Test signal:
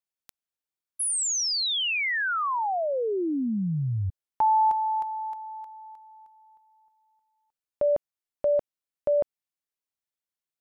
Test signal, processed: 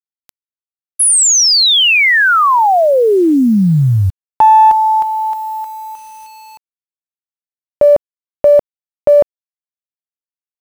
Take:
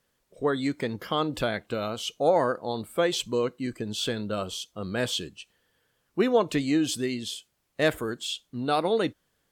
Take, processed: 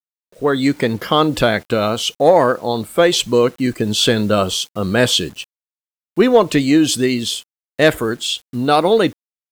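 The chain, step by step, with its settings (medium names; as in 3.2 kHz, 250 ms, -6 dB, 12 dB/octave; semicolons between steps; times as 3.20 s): in parallel at -9 dB: one-sided clip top -21 dBFS, bottom -15.5 dBFS; on the sum: bit crusher 9-bit; level rider gain up to 14.5 dB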